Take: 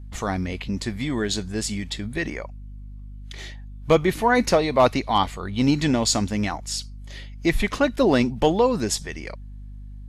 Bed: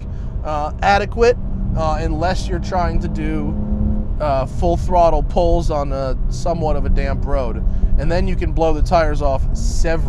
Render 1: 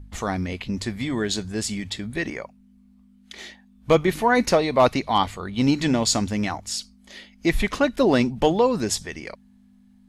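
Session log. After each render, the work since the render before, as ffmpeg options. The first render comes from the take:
-af "bandreject=f=50:t=h:w=4,bandreject=f=100:t=h:w=4,bandreject=f=150:t=h:w=4"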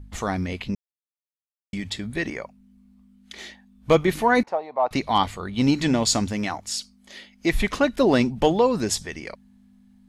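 -filter_complex "[0:a]asettb=1/sr,asplit=3[a][b][c];[a]atrim=end=4.434[d];[b]atrim=start=4.43:end=4.91,asetpts=PTS-STARTPTS,afade=t=in:d=0.004:c=qsin,afade=t=out:st=0.476:d=0.004:c=qsin,bandpass=f=800:t=q:w=3.7[e];[c]atrim=start=4.906[f];[d][e]acrossfade=d=0.004:c1=hsin:c2=qsin[g];[g][f]acrossfade=d=0.004:c1=qsin:c2=hsin,asettb=1/sr,asplit=3[h][i][j];[h]atrim=end=6.324[k];[i]atrim=start=6.32:end=7.52,asetpts=PTS-STARTPTS,afade=t=in:d=0.004:c=qsin,afade=t=out:st=1.196:d=0.004:c=qsin,lowshelf=f=140:g=-8[l];[j]atrim=start=7.516[m];[k][l]acrossfade=d=0.004:c1=hsin:c2=qsin[n];[n][m]acrossfade=d=0.004:c1=qsin:c2=hsin,asplit=3[o][p][q];[o]atrim=end=0.75,asetpts=PTS-STARTPTS,afade=t=out:st=0.746:d=0.004:c=hsin[r];[p]atrim=start=0.75:end=1.73,asetpts=PTS-STARTPTS,volume=0[s];[q]atrim=start=1.73,asetpts=PTS-STARTPTS,afade=t=in:d=0.004:c=hsin[t];[r][s][t]concat=n=3:v=0:a=1"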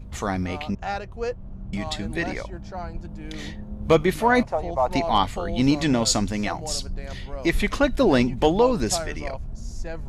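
-filter_complex "[1:a]volume=-15.5dB[a];[0:a][a]amix=inputs=2:normalize=0"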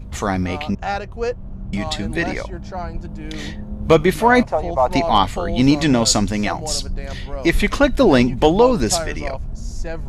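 -af "volume=5.5dB,alimiter=limit=-2dB:level=0:latency=1"

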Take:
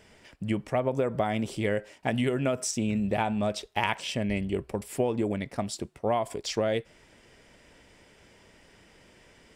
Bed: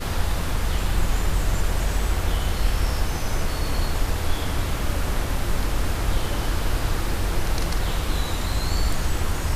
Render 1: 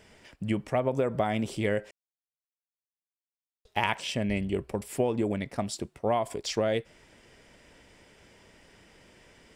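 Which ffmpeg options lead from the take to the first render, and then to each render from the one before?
-filter_complex "[0:a]asplit=3[a][b][c];[a]atrim=end=1.91,asetpts=PTS-STARTPTS,afade=t=out:st=1.906:d=0.004:c=hsin[d];[b]atrim=start=1.91:end=3.65,asetpts=PTS-STARTPTS,volume=0[e];[c]atrim=start=3.65,asetpts=PTS-STARTPTS,afade=t=in:d=0.004:c=hsin[f];[d][e][f]concat=n=3:v=0:a=1"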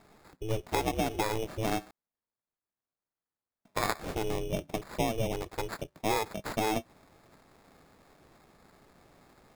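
-af "acrusher=samples=15:mix=1:aa=0.000001,aeval=exprs='val(0)*sin(2*PI*220*n/s)':c=same"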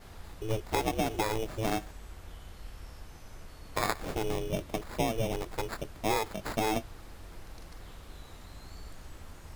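-filter_complex "[1:a]volume=-23.5dB[a];[0:a][a]amix=inputs=2:normalize=0"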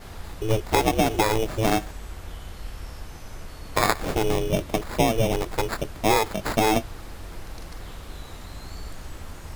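-af "volume=9dB"

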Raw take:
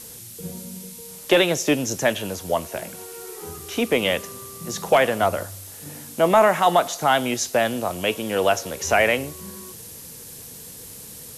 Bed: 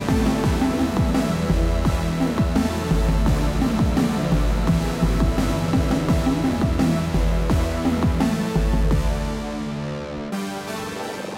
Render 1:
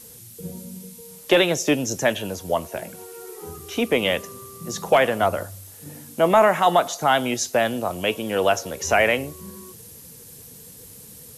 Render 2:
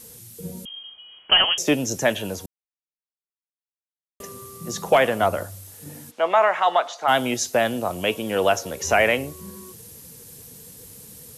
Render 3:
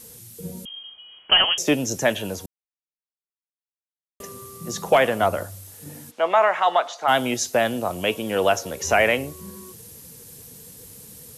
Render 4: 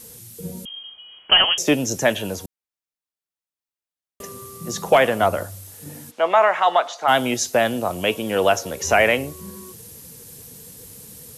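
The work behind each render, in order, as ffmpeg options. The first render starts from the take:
-af "afftdn=nr=6:nf=-40"
-filter_complex "[0:a]asettb=1/sr,asplit=3[a][b][c];[a]atrim=end=0.654[d];[b]atrim=start=0.65:end=1.58,asetpts=PTS-STARTPTS,afade=t=in:d=0.004:c=qsin,afade=t=out:st=0.926:d=0.004:c=qsin,lowpass=f=2.9k:t=q:w=0.5098,lowpass=f=2.9k:t=q:w=0.6013,lowpass=f=2.9k:t=q:w=0.9,lowpass=f=2.9k:t=q:w=2.563,afreqshift=-3400[e];[c]atrim=start=1.576[f];[d][e]acrossfade=d=0.004:c1=hsin:c2=qsin[g];[g][f]acrossfade=d=0.004:c1=qsin:c2=hsin,asplit=3[h][i][j];[h]afade=t=out:st=6.1:d=0.02[k];[i]highpass=630,lowpass=3.9k,afade=t=in:st=6.1:d=0.02,afade=t=out:st=7.07:d=0.02[l];[j]afade=t=in:st=7.07:d=0.02[m];[k][l][m]amix=inputs=3:normalize=0,asplit=3[n][o][p];[n]atrim=end=2.46,asetpts=PTS-STARTPTS,afade=t=out:st=2.456:d=0.004:c=hsin[q];[o]atrim=start=2.46:end=4.2,asetpts=PTS-STARTPTS,volume=0[r];[p]atrim=start=4.2,asetpts=PTS-STARTPTS,afade=t=in:d=0.004:c=hsin[s];[q][r][s]concat=n=3:v=0:a=1"
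-af anull
-af "volume=2dB"

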